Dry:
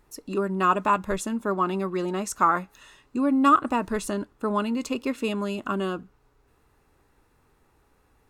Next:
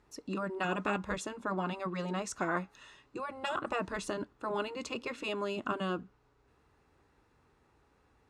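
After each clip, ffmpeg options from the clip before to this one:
ffmpeg -i in.wav -af "highpass=49,afftfilt=real='re*lt(hypot(re,im),0.316)':imag='im*lt(hypot(re,im),0.316)':win_size=1024:overlap=0.75,lowpass=6400,volume=-3.5dB" out.wav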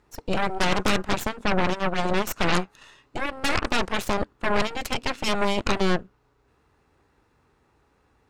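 ffmpeg -i in.wav -af "aeval=exprs='0.126*(cos(1*acos(clip(val(0)/0.126,-1,1)))-cos(1*PI/2))+0.0631*(cos(8*acos(clip(val(0)/0.126,-1,1)))-cos(8*PI/2))':channel_layout=same,volume=4dB" out.wav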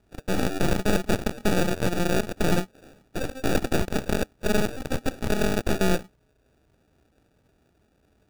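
ffmpeg -i in.wav -af "acrusher=samples=42:mix=1:aa=0.000001" out.wav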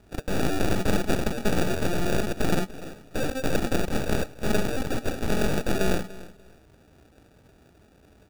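ffmpeg -i in.wav -filter_complex "[0:a]asplit=2[link_01][link_02];[link_02]aeval=exprs='0.282*sin(PI/2*5.01*val(0)/0.282)':channel_layout=same,volume=-8dB[link_03];[link_01][link_03]amix=inputs=2:normalize=0,aecho=1:1:293|586:0.126|0.0277,volume=-3.5dB" out.wav

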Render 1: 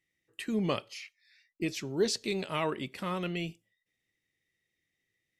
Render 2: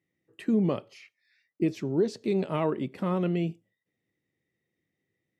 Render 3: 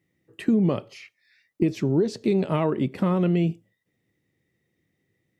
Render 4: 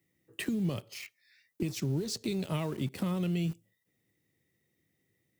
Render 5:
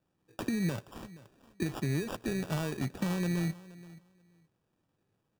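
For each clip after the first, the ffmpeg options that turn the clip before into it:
ffmpeg -i in.wav -af "highpass=120,tiltshelf=frequency=1300:gain=9.5,alimiter=limit=-16dB:level=0:latency=1:release=378" out.wav
ffmpeg -i in.wav -af "acompressor=threshold=-26dB:ratio=4,lowshelf=frequency=150:gain=7,volume=6.5dB" out.wav
ffmpeg -i in.wav -filter_complex "[0:a]acrossover=split=130|3000[link_01][link_02][link_03];[link_02]acompressor=threshold=-35dB:ratio=5[link_04];[link_01][link_04][link_03]amix=inputs=3:normalize=0,asplit=2[link_05][link_06];[link_06]aeval=exprs='val(0)*gte(abs(val(0)),0.00794)':channel_layout=same,volume=-4dB[link_07];[link_05][link_07]amix=inputs=2:normalize=0,crystalizer=i=1.5:c=0,volume=-4.5dB" out.wav
ffmpeg -i in.wav -af "aecho=1:1:475|950:0.126|0.0227,acrusher=samples=21:mix=1:aa=0.000001,aeval=exprs='0.1*(cos(1*acos(clip(val(0)/0.1,-1,1)))-cos(1*PI/2))+0.00251*(cos(7*acos(clip(val(0)/0.1,-1,1)))-cos(7*PI/2))':channel_layout=same" out.wav

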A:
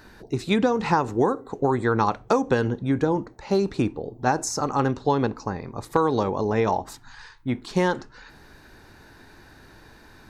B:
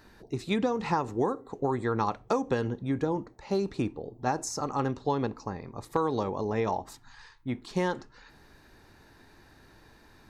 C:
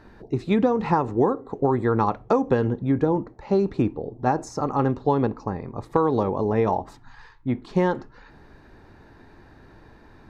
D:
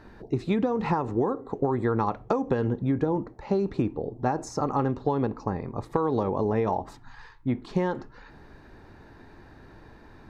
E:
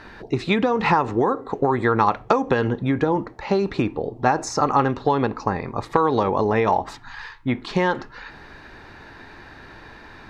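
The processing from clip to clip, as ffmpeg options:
ffmpeg -i in.wav -af "bandreject=frequency=1500:width=15,volume=-6.5dB" out.wav
ffmpeg -i in.wav -af "lowpass=frequency=1200:poles=1,volume=8dB" out.wav
ffmpeg -i in.wav -af "acompressor=threshold=-21dB:ratio=6" out.wav
ffmpeg -i in.wav -af "equalizer=frequency=2700:width=0.34:gain=12.5,volume=2.5dB" out.wav

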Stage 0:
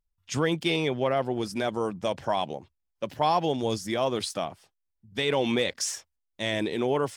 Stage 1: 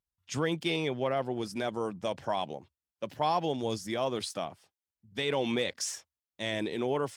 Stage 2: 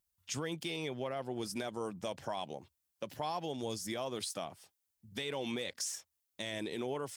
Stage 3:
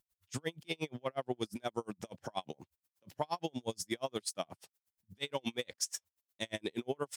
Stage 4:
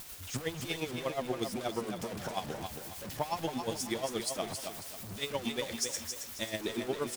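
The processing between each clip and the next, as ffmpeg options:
ffmpeg -i in.wav -af "highpass=66,volume=-4.5dB" out.wav
ffmpeg -i in.wav -af "highshelf=frequency=5900:gain=11,alimiter=limit=-24dB:level=0:latency=1:release=285,acompressor=threshold=-46dB:ratio=1.5,volume=2dB" out.wav
ffmpeg -i in.wav -af "aeval=exprs='val(0)*pow(10,-40*(0.5-0.5*cos(2*PI*8.4*n/s))/20)':channel_layout=same,volume=6.5dB" out.wav
ffmpeg -i in.wav -filter_complex "[0:a]aeval=exprs='val(0)+0.5*0.0126*sgn(val(0))':channel_layout=same,asplit=2[link_01][link_02];[link_02]aecho=0:1:271|542|813|1084:0.473|0.161|0.0547|0.0186[link_03];[link_01][link_03]amix=inputs=2:normalize=0" out.wav

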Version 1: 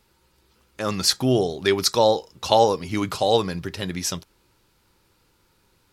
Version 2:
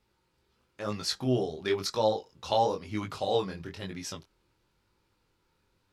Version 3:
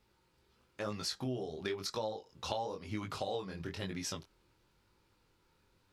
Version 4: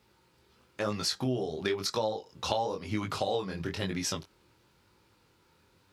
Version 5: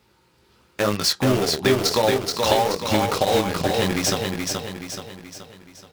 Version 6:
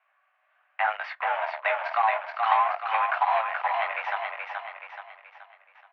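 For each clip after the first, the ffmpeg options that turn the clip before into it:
ffmpeg -i in.wav -af "highshelf=frequency=7400:gain=-10.5,flanger=delay=18.5:depth=7.2:speed=0.99,volume=-6dB" out.wav
ffmpeg -i in.wav -af "acompressor=threshold=-36dB:ratio=6,volume=1dB" out.wav
ffmpeg -i in.wav -af "highpass=69,volume=7dB" out.wav
ffmpeg -i in.wav -filter_complex "[0:a]asplit=2[link_01][link_02];[link_02]acrusher=bits=4:mix=0:aa=0.000001,volume=-3dB[link_03];[link_01][link_03]amix=inputs=2:normalize=0,aecho=1:1:427|854|1281|1708|2135|2562:0.631|0.297|0.139|0.0655|0.0308|0.0145,volume=5.5dB" out.wav
ffmpeg -i in.wav -filter_complex "[0:a]aemphasis=mode=production:type=bsi,asplit=2[link_01][link_02];[link_02]acrusher=bits=4:mix=0:aa=0.000001,volume=-5dB[link_03];[link_01][link_03]amix=inputs=2:normalize=0,highpass=frequency=480:width_type=q:width=0.5412,highpass=frequency=480:width_type=q:width=1.307,lowpass=frequency=2200:width_type=q:width=0.5176,lowpass=frequency=2200:width_type=q:width=0.7071,lowpass=frequency=2200:width_type=q:width=1.932,afreqshift=230,volume=-4.5dB" out.wav

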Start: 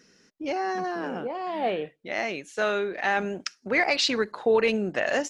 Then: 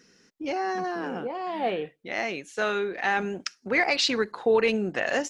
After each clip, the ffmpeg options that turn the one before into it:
ffmpeg -i in.wav -af "bandreject=frequency=610:width=12" out.wav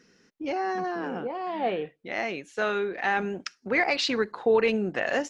ffmpeg -i in.wav -af "highshelf=frequency=5200:gain=-9" out.wav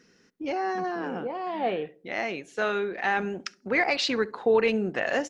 ffmpeg -i in.wav -filter_complex "[0:a]asplit=2[link_01][link_02];[link_02]adelay=68,lowpass=frequency=850:poles=1,volume=-19dB,asplit=2[link_03][link_04];[link_04]adelay=68,lowpass=frequency=850:poles=1,volume=0.49,asplit=2[link_05][link_06];[link_06]adelay=68,lowpass=frequency=850:poles=1,volume=0.49,asplit=2[link_07][link_08];[link_08]adelay=68,lowpass=frequency=850:poles=1,volume=0.49[link_09];[link_01][link_03][link_05][link_07][link_09]amix=inputs=5:normalize=0" out.wav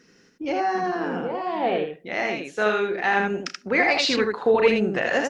ffmpeg -i in.wav -af "aecho=1:1:33|80:0.282|0.668,volume=3dB" out.wav

